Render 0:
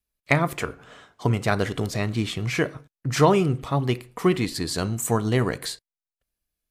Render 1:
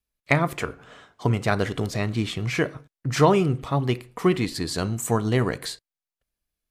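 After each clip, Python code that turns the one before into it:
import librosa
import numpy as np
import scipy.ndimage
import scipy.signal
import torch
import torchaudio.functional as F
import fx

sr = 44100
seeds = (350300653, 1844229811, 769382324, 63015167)

y = fx.high_shelf(x, sr, hz=7500.0, db=-4.0)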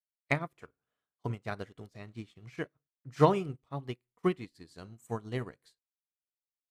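y = fx.upward_expand(x, sr, threshold_db=-38.0, expansion=2.5)
y = y * librosa.db_to_amplitude(-3.5)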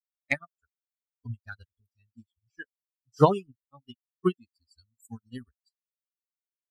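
y = fx.bin_expand(x, sr, power=3.0)
y = y * librosa.db_to_amplitude(6.5)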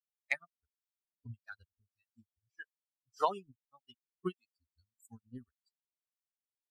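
y = fx.harmonic_tremolo(x, sr, hz=1.7, depth_pct=100, crossover_hz=590.0)
y = y * librosa.db_to_amplitude(-5.5)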